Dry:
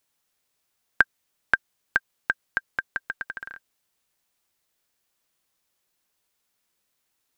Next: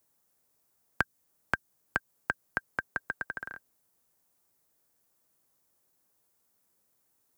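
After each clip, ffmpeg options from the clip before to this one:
ffmpeg -i in.wav -filter_complex "[0:a]highpass=59,equalizer=frequency=3000:width_type=o:width=2.1:gain=-13,acrossover=split=320|3000[link_01][link_02][link_03];[link_02]acompressor=threshold=-32dB:ratio=6[link_04];[link_01][link_04][link_03]amix=inputs=3:normalize=0,volume=5dB" out.wav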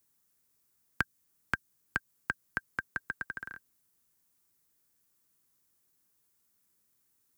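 ffmpeg -i in.wav -af "equalizer=frequency=650:width=1.2:gain=-11" out.wav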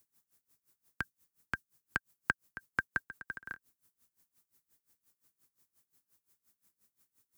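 ffmpeg -i in.wav -af "aeval=exprs='val(0)*pow(10,-22*(0.5-0.5*cos(2*PI*5.7*n/s))/20)':channel_layout=same,volume=5dB" out.wav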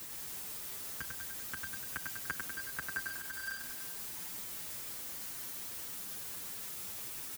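ffmpeg -i in.wav -filter_complex "[0:a]aeval=exprs='val(0)+0.5*0.0335*sgn(val(0))':channel_layout=same,asplit=2[link_01][link_02];[link_02]aecho=0:1:98|196|294|392|490|588|686|784:0.631|0.372|0.22|0.13|0.0765|0.0451|0.0266|0.0157[link_03];[link_01][link_03]amix=inputs=2:normalize=0,asplit=2[link_04][link_05];[link_05]adelay=7.1,afreqshift=2.3[link_06];[link_04][link_06]amix=inputs=2:normalize=1,volume=-6dB" out.wav

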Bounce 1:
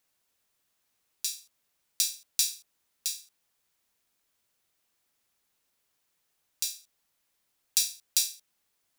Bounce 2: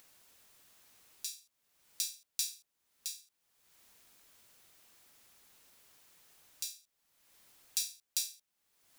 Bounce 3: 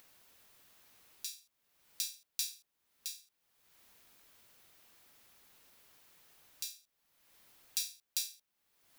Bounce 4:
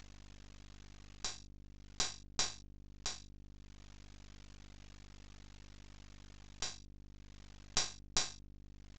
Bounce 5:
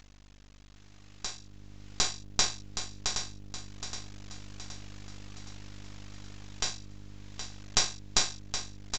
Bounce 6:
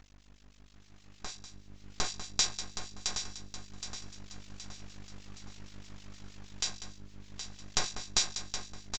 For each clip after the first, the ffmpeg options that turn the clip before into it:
ffmpeg -i in.wav -af "acompressor=mode=upward:threshold=-37dB:ratio=2.5,volume=-8.5dB" out.wav
ffmpeg -i in.wav -af "equalizer=frequency=7800:width_type=o:width=1.2:gain=-4.5,volume=1dB" out.wav
ffmpeg -i in.wav -af "aeval=exprs='val(0)+0.00126*(sin(2*PI*50*n/s)+sin(2*PI*2*50*n/s)/2+sin(2*PI*3*50*n/s)/3+sin(2*PI*4*50*n/s)/4+sin(2*PI*5*50*n/s)/5)':channel_layout=same,aresample=16000,aeval=exprs='max(val(0),0)':channel_layout=same,aresample=44100,volume=7dB" out.wav
ffmpeg -i in.wav -filter_complex "[0:a]asplit=2[link_01][link_02];[link_02]aecho=0:1:770|1540|2310|3080|3850:0.355|0.163|0.0751|0.0345|0.0159[link_03];[link_01][link_03]amix=inputs=2:normalize=0,dynaudnorm=framelen=420:gausssize=7:maxgain=9.5dB" out.wav
ffmpeg -i in.wav -filter_complex "[0:a]aecho=1:1:195:0.251,acrossover=split=2100[link_01][link_02];[link_01]aeval=exprs='val(0)*(1-0.7/2+0.7/2*cos(2*PI*6.4*n/s))':channel_layout=same[link_03];[link_02]aeval=exprs='val(0)*(1-0.7/2-0.7/2*cos(2*PI*6.4*n/s))':channel_layout=same[link_04];[link_03][link_04]amix=inputs=2:normalize=0" out.wav

